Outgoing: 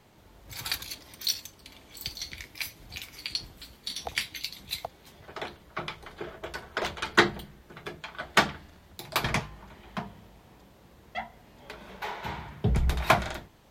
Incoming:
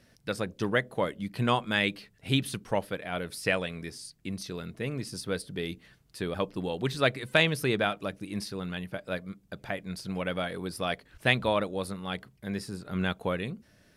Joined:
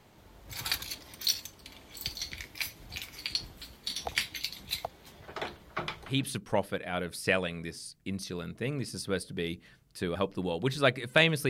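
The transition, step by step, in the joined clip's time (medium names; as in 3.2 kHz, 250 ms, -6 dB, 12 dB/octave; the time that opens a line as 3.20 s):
outgoing
6.13 s: go over to incoming from 2.32 s, crossfade 0.26 s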